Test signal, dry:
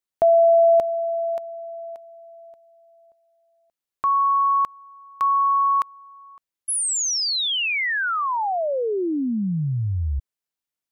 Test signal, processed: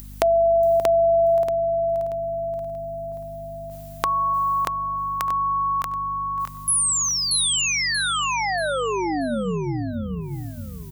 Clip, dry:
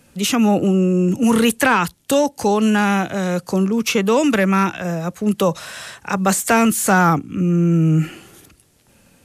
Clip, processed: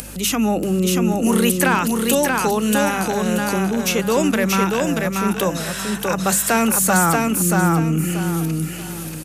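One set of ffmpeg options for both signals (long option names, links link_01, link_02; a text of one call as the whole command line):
ffmpeg -i in.wav -filter_complex "[0:a]highpass=frequency=140:width=0.5412,highpass=frequency=140:width=1.3066,highshelf=frequency=9100:gain=12,bandreject=frequency=50:width_type=h:width=6,bandreject=frequency=100:width_type=h:width=6,bandreject=frequency=150:width_type=h:width=6,bandreject=frequency=200:width_type=h:width=6,bandreject=frequency=250:width_type=h:width=6,acompressor=mode=upward:threshold=-24dB:ratio=2.5:attack=19:release=22:knee=2.83:detection=peak,aeval=exprs='val(0)+0.0178*(sin(2*PI*50*n/s)+sin(2*PI*2*50*n/s)/2+sin(2*PI*3*50*n/s)/3+sin(2*PI*4*50*n/s)/4+sin(2*PI*5*50*n/s)/5)':channel_layout=same,asplit=2[link_01][link_02];[link_02]aecho=0:1:633|1266|1899|2532:0.708|0.212|0.0637|0.0191[link_03];[link_01][link_03]amix=inputs=2:normalize=0,volume=-3dB" out.wav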